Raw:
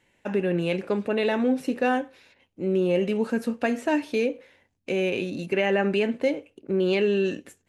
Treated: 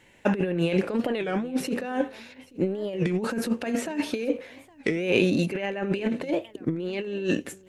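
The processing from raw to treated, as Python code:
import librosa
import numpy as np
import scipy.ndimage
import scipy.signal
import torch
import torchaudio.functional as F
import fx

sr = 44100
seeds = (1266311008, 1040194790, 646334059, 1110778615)

y = fx.over_compress(x, sr, threshold_db=-28.0, ratio=-0.5)
y = y + 10.0 ** (-22.5 / 20.0) * np.pad(y, (int(832 * sr / 1000.0), 0))[:len(y)]
y = fx.record_warp(y, sr, rpm=33.33, depth_cents=250.0)
y = y * librosa.db_to_amplitude(3.5)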